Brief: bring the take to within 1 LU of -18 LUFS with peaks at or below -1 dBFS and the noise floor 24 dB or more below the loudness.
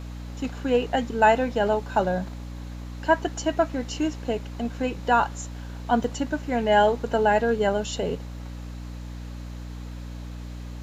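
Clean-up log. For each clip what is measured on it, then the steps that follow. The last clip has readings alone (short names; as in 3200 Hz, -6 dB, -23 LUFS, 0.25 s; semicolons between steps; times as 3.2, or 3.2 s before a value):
dropouts 1; longest dropout 3.5 ms; hum 60 Hz; harmonics up to 300 Hz; hum level -34 dBFS; loudness -24.5 LUFS; peak -5.5 dBFS; loudness target -18.0 LUFS
-> interpolate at 6.04, 3.5 ms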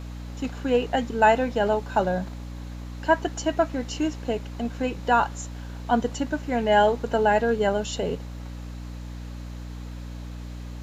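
dropouts 0; hum 60 Hz; harmonics up to 300 Hz; hum level -34 dBFS
-> notches 60/120/180/240/300 Hz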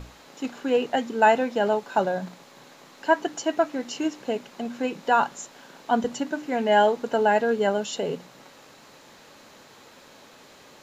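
hum none; loudness -24.5 LUFS; peak -5.5 dBFS; loudness target -18.0 LUFS
-> gain +6.5 dB; limiter -1 dBFS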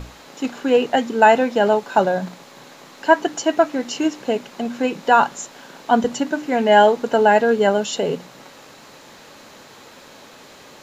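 loudness -18.5 LUFS; peak -1.0 dBFS; noise floor -44 dBFS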